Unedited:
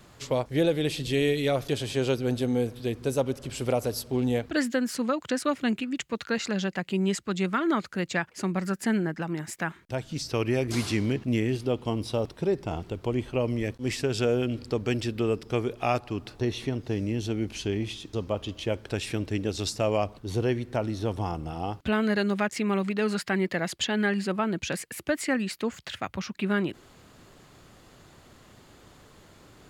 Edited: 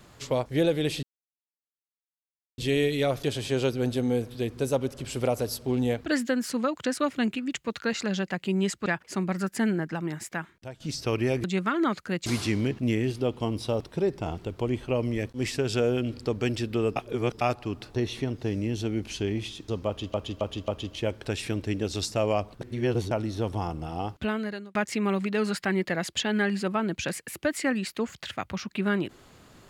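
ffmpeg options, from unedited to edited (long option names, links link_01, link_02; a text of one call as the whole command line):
ffmpeg -i in.wav -filter_complex "[0:a]asplit=14[link_01][link_02][link_03][link_04][link_05][link_06][link_07][link_08][link_09][link_10][link_11][link_12][link_13][link_14];[link_01]atrim=end=1.03,asetpts=PTS-STARTPTS,afade=type=out:start_time=1.026:duration=0.004:curve=hsin,apad=pad_dur=1.55[link_15];[link_02]atrim=start=1.03:end=7.312,asetpts=PTS-STARTPTS,afade=type=in:duration=0.004:curve=hsin[link_16];[link_03]atrim=start=8.128:end=10.07,asetpts=PTS-STARTPTS,afade=type=out:start_time=1.312:duration=0.63:silence=0.211349[link_17];[link_04]atrim=start=10.07:end=10.712,asetpts=PTS-STARTPTS,afade=type=in:duration=0.004:curve=hsin:silence=0.211349[link_18];[link_05]atrim=start=7.308:end=8.132[link_19];[link_06]atrim=start=10.708:end=15.412[link_20];[link_07]atrim=start=15.408:end=15.862,asetpts=PTS-STARTPTS,areverse[link_21];[link_08]atrim=start=15.858:end=18.592[link_22];[link_09]atrim=start=18.318:end=18.592[link_23];[link_10]atrim=start=18.318:end=18.592[link_24];[link_11]atrim=start=18.318:end=20.252[link_25];[link_12]atrim=start=20.248:end=20.752,asetpts=PTS-STARTPTS,areverse[link_26];[link_13]atrim=start=20.748:end=22.39,asetpts=PTS-STARTPTS,afade=type=out:start_time=0.982:duration=0.66[link_27];[link_14]atrim=start=22.39,asetpts=PTS-STARTPTS,afade=type=in:duration=0.004:curve=hsin[link_28];[link_15][link_16]concat=n=2:v=0:a=1[link_29];[link_17][link_18]concat=n=2:v=0:a=1[link_30];[link_29][link_30]acrossfade=duration=0.004:curve1=hsin:curve2=hsin[link_31];[link_31][link_19]acrossfade=duration=0.004:curve1=hsin:curve2=hsin[link_32];[link_32][link_20]acrossfade=duration=0.004:curve1=hsin:curve2=hsin[link_33];[link_33][link_21]acrossfade=duration=0.004:curve1=hsin:curve2=hsin[link_34];[link_34][link_22]acrossfade=duration=0.004:curve1=hsin:curve2=hsin[link_35];[link_35][link_23]acrossfade=duration=0.004:curve1=hsin:curve2=hsin[link_36];[link_36][link_24]acrossfade=duration=0.004:curve1=hsin:curve2=hsin[link_37];[link_37][link_25]acrossfade=duration=0.004:curve1=hsin:curve2=hsin[link_38];[link_38][link_26]acrossfade=duration=0.004:curve1=hsin:curve2=hsin[link_39];[link_27][link_28]concat=n=2:v=0:a=1[link_40];[link_39][link_40]acrossfade=duration=0.004:curve1=hsin:curve2=hsin" out.wav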